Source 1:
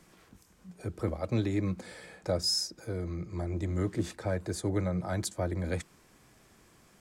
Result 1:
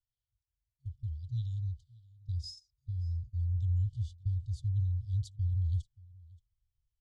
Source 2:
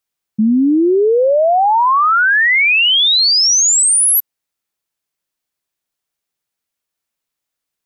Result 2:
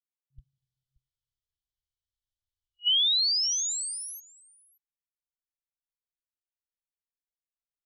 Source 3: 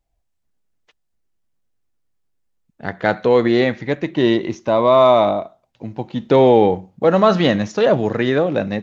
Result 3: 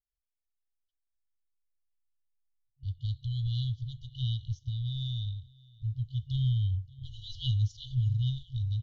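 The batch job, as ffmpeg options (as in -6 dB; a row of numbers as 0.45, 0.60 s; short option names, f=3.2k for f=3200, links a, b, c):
-af "lowpass=5.8k,highshelf=f=2.1k:g=-11,agate=range=-22dB:threshold=-39dB:ratio=16:detection=peak,aecho=1:1:578:0.0631,afftfilt=real='re*(1-between(b*sr/4096,130,2900))':imag='im*(1-between(b*sr/4096,130,2900))':win_size=4096:overlap=0.75,asubboost=boost=8.5:cutoff=72,volume=-3dB"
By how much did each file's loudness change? -2.0, -13.5, -17.0 LU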